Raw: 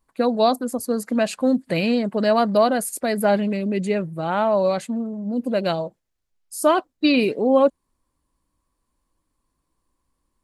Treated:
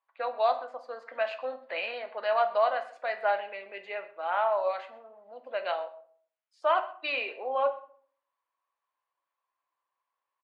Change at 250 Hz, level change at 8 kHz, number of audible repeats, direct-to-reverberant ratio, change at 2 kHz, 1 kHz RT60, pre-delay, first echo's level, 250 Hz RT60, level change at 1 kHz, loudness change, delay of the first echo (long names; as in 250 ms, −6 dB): −36.0 dB, below −35 dB, 1, 6.0 dB, −4.5 dB, 0.50 s, 4 ms, −21.0 dB, 0.65 s, −5.0 dB, −9.5 dB, 128 ms